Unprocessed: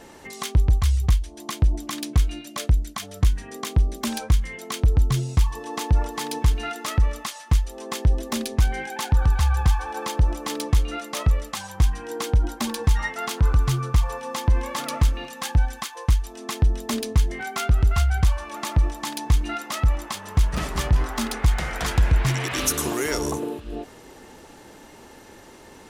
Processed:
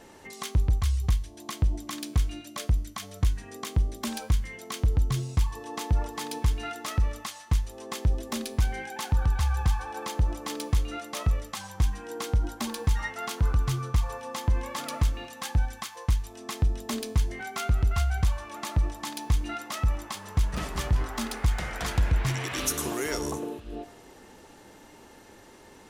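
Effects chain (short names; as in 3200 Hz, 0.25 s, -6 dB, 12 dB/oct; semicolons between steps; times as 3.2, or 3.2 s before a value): resonator 100 Hz, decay 0.72 s, harmonics all, mix 50%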